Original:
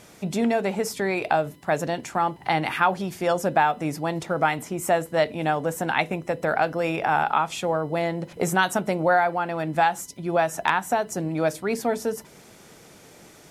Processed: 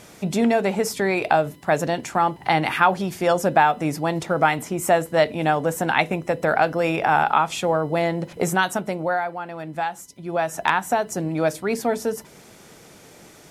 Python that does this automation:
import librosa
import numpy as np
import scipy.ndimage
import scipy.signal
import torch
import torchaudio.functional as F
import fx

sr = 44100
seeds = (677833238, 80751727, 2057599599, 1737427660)

y = fx.gain(x, sr, db=fx.line((8.25, 3.5), (9.36, -5.5), (10.08, -5.5), (10.67, 2.0)))